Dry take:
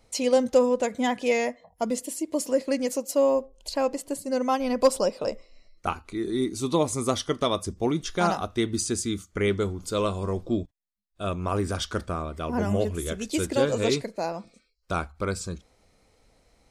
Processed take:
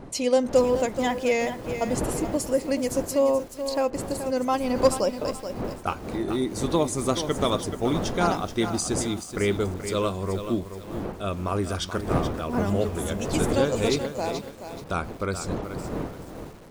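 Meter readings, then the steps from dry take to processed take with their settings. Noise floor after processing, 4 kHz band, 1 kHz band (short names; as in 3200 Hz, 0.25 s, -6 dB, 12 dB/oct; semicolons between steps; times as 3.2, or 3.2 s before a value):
-41 dBFS, +0.5 dB, +1.0 dB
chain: wind noise 450 Hz -35 dBFS; lo-fi delay 0.429 s, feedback 35%, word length 7-bit, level -9 dB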